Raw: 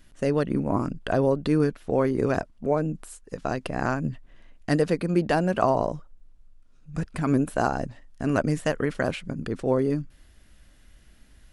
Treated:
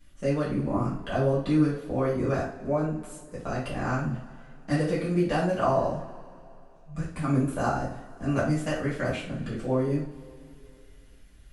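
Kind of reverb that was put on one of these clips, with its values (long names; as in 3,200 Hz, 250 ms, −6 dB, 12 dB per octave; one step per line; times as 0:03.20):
coupled-rooms reverb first 0.42 s, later 2.7 s, from −21 dB, DRR −9.5 dB
level −12 dB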